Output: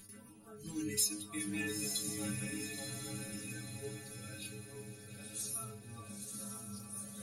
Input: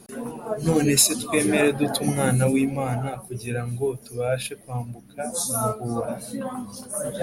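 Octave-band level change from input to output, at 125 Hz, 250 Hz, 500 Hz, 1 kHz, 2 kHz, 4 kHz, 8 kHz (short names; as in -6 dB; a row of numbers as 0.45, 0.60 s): -19.5, -18.0, -24.0, -24.5, -14.5, -12.5, -12.5 dB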